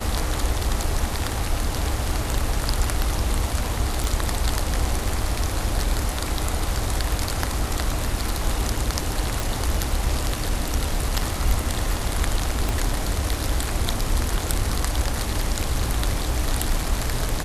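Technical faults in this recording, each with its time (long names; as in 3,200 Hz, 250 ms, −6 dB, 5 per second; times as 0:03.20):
0:04.04: click
0:09.40: click
0:12.69: click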